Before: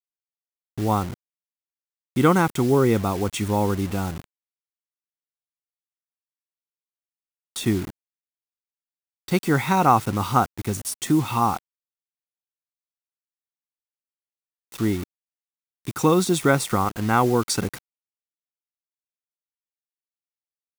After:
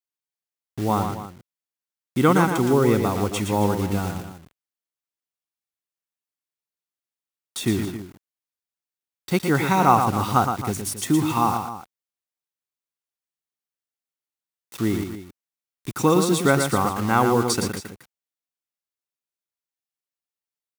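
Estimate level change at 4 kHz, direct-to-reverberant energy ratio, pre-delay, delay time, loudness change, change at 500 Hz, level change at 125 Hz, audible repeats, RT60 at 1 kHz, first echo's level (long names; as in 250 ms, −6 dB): +1.0 dB, no reverb audible, no reverb audible, 116 ms, +0.5 dB, +1.0 dB, 0.0 dB, 2, no reverb audible, −6.5 dB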